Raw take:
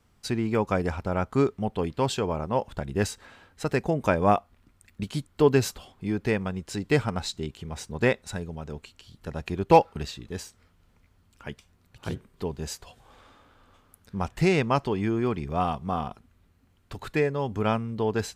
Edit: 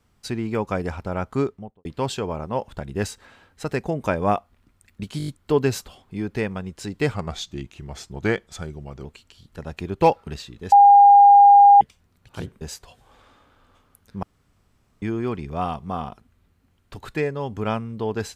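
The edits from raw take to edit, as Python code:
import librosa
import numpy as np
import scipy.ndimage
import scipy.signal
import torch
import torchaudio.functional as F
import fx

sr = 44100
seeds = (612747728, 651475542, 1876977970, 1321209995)

y = fx.studio_fade_out(x, sr, start_s=1.35, length_s=0.5)
y = fx.edit(y, sr, fx.stutter(start_s=5.18, slice_s=0.02, count=6),
    fx.speed_span(start_s=7.04, length_s=1.7, speed=0.89),
    fx.bleep(start_s=10.41, length_s=1.09, hz=808.0, db=-7.0),
    fx.cut(start_s=12.3, length_s=0.3),
    fx.room_tone_fill(start_s=14.22, length_s=0.79), tone=tone)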